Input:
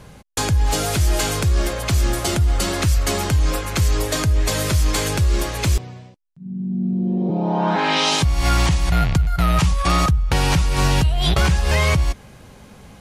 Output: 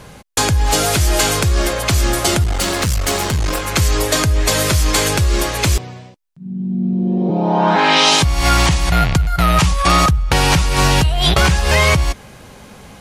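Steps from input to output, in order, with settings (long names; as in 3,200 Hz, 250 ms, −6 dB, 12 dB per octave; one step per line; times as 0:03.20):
low-shelf EQ 260 Hz −5.5 dB
0:02.43–0:03.68: asymmetric clip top −27.5 dBFS
level +7 dB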